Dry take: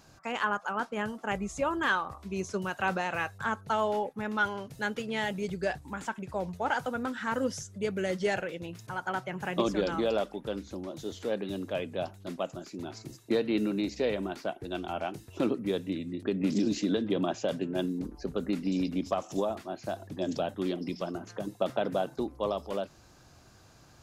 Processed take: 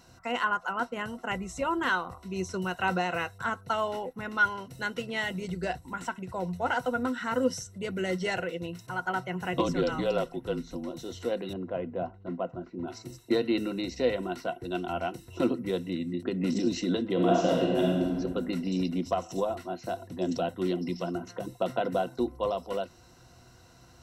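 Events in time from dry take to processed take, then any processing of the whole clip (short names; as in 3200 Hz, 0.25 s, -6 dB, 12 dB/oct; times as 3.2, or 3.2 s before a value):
9.53–10.89 frequency shift -34 Hz
11.53–12.88 LPF 1400 Hz
17.13–18.05 reverb throw, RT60 1.7 s, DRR -3.5 dB
whole clip: ripple EQ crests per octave 2, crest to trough 11 dB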